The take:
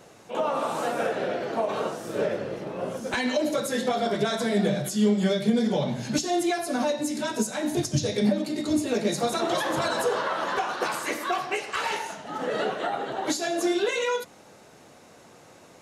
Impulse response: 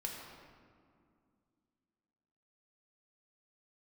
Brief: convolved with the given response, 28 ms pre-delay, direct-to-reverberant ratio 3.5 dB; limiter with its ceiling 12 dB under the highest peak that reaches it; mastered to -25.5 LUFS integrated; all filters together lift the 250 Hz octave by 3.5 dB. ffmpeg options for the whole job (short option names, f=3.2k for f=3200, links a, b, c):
-filter_complex "[0:a]equalizer=f=250:t=o:g=4.5,alimiter=limit=-20.5dB:level=0:latency=1,asplit=2[a][b];[1:a]atrim=start_sample=2205,adelay=28[c];[b][c]afir=irnorm=-1:irlink=0,volume=-3.5dB[d];[a][d]amix=inputs=2:normalize=0,volume=2dB"